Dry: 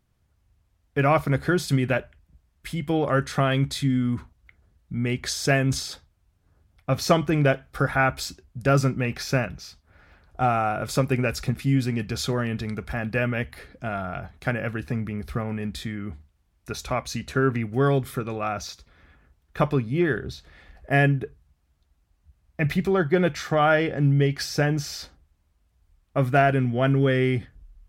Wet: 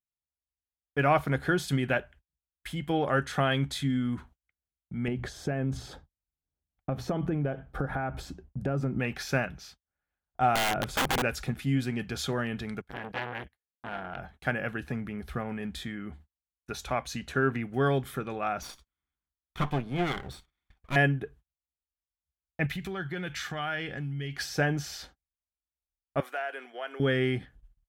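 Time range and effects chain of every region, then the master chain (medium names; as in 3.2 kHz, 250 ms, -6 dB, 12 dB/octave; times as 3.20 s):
5.08–9.00 s: hum notches 60/120/180 Hz + compression 10:1, threshold -28 dBFS + tilt shelf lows +9.5 dB, about 1.3 kHz
10.55–11.22 s: tilt EQ -2 dB/octave + integer overflow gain 17.5 dB
12.81–14.19 s: gate -37 dBFS, range -26 dB + transformer saturation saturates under 2 kHz
18.62–20.96 s: comb filter that takes the minimum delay 0.89 ms + band-stop 830 Hz, Q 16
22.66–24.37 s: FFT filter 140 Hz 0 dB, 600 Hz -8 dB, 1.2 kHz -2 dB, 2.4 kHz +3 dB + compression 4:1, threshold -27 dBFS
26.20–27.00 s: Bessel high-pass 640 Hz, order 6 + compression 2:1, threshold -34 dBFS
whole clip: graphic EQ with 31 bands 100 Hz -10 dB, 800 Hz +5 dB, 1.6 kHz +5 dB, 3.15 kHz +5 dB, 5 kHz -3 dB; gate -46 dBFS, range -31 dB; trim -5 dB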